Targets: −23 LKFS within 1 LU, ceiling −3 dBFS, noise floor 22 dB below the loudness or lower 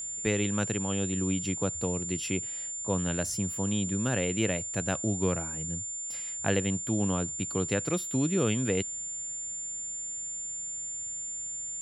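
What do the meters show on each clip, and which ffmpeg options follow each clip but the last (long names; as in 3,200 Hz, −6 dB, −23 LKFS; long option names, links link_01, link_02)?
interfering tone 7,200 Hz; level of the tone −34 dBFS; integrated loudness −30.0 LKFS; sample peak −10.5 dBFS; target loudness −23.0 LKFS
→ -af "bandreject=frequency=7200:width=30"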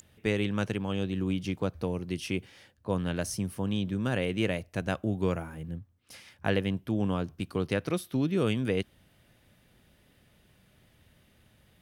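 interfering tone none found; integrated loudness −31.5 LKFS; sample peak −10.5 dBFS; target loudness −23.0 LKFS
→ -af "volume=8.5dB,alimiter=limit=-3dB:level=0:latency=1"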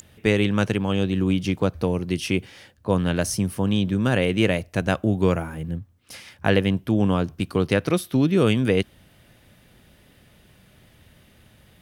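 integrated loudness −23.0 LKFS; sample peak −3.0 dBFS; background noise floor −56 dBFS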